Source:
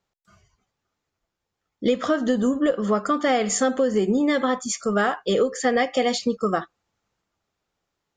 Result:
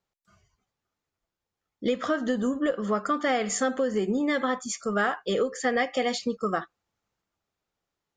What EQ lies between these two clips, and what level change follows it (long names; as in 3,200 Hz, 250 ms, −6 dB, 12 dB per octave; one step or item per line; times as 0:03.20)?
dynamic equaliser 1,700 Hz, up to +4 dB, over −36 dBFS, Q 1.1
−5.5 dB